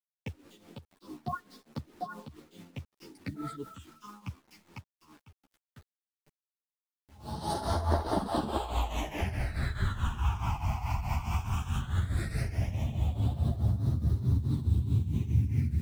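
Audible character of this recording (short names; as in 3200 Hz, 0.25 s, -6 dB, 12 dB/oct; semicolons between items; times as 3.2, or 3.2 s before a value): phasing stages 8, 0.16 Hz, lowest notch 490–2400 Hz; a quantiser's noise floor 10-bit, dither none; tremolo triangle 4.7 Hz, depth 80%; a shimmering, thickened sound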